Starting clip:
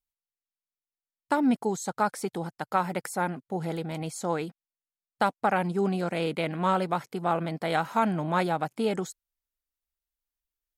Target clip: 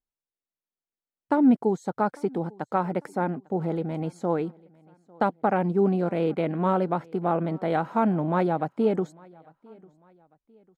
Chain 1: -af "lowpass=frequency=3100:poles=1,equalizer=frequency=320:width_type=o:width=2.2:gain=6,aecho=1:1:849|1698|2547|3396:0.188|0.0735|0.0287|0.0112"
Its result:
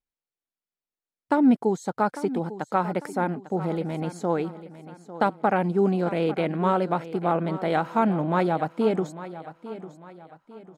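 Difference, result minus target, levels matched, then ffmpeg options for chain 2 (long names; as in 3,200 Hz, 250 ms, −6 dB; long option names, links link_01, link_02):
echo-to-direct +11.5 dB; 4,000 Hz band +5.5 dB
-af "lowpass=frequency=1200:poles=1,equalizer=frequency=320:width_type=o:width=2.2:gain=6,aecho=1:1:849|1698:0.0501|0.0195"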